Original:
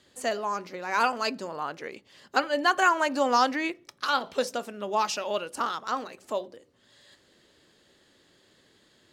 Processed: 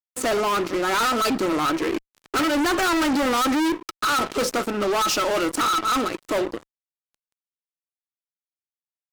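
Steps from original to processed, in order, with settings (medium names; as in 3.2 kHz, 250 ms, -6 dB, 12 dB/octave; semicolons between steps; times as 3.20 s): small resonant body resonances 320/1300 Hz, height 18 dB, ringing for 75 ms; fuzz box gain 35 dB, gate -43 dBFS; trim -6.5 dB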